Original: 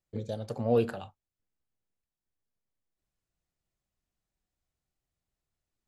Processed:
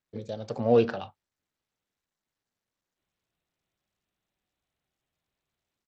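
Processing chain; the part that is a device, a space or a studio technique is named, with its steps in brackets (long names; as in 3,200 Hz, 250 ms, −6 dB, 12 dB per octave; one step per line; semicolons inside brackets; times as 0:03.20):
Bluetooth headset (high-pass filter 160 Hz 6 dB per octave; automatic gain control gain up to 5.5 dB; downsampling to 16,000 Hz; SBC 64 kbit/s 32,000 Hz)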